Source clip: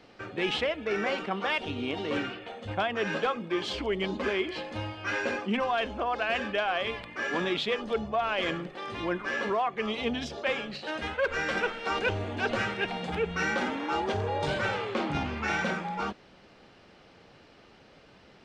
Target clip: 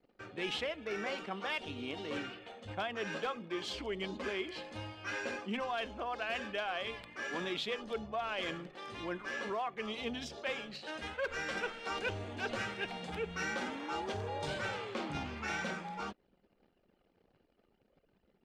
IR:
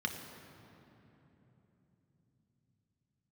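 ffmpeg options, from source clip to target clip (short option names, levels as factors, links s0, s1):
-af "crystalizer=i=1.5:c=0,anlmdn=0.00398,volume=0.355"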